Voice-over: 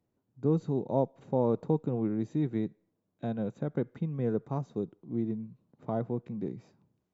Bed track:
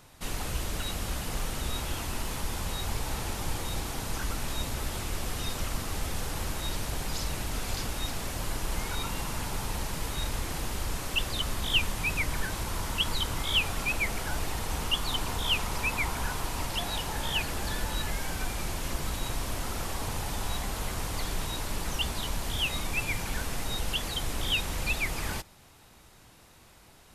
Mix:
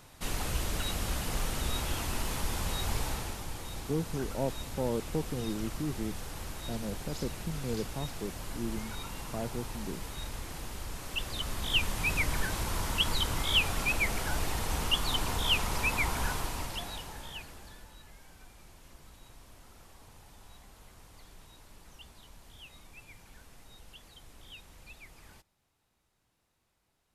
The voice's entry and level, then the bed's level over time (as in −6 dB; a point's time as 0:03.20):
3.45 s, −5.0 dB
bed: 0:03.03 0 dB
0:03.47 −7.5 dB
0:10.94 −7.5 dB
0:12.13 0 dB
0:16.30 0 dB
0:17.98 −21.5 dB